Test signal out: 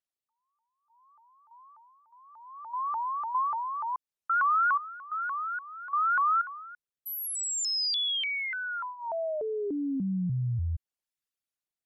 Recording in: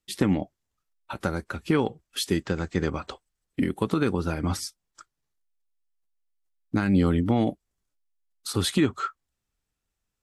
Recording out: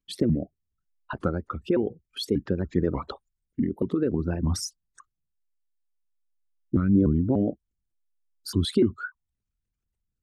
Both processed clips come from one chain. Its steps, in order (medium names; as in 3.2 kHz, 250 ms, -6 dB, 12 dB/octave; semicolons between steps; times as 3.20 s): resonances exaggerated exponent 2; rotary cabinet horn 0.6 Hz; vibrato with a chosen wave saw up 3.4 Hz, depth 250 cents; trim +2 dB